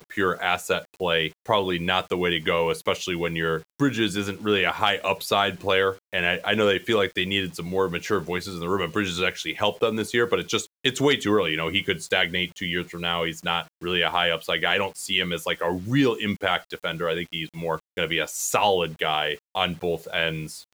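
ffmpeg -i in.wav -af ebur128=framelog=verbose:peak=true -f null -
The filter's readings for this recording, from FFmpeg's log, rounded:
Integrated loudness:
  I:         -24.3 LUFS
  Threshold: -34.3 LUFS
Loudness range:
  LRA:         2.3 LU
  Threshold: -44.2 LUFS
  LRA low:   -25.3 LUFS
  LRA high:  -23.0 LUFS
True peak:
  Peak:       -6.4 dBFS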